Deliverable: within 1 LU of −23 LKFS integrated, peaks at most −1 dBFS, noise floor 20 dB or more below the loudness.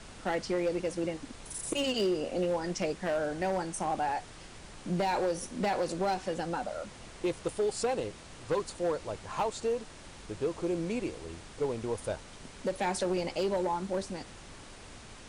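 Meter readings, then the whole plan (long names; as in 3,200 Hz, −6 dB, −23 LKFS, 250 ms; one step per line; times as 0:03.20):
share of clipped samples 1.2%; peaks flattened at −24.0 dBFS; background noise floor −49 dBFS; target noise floor −53 dBFS; integrated loudness −33.0 LKFS; sample peak −24.0 dBFS; target loudness −23.0 LKFS
→ clipped peaks rebuilt −24 dBFS
noise reduction from a noise print 6 dB
level +10 dB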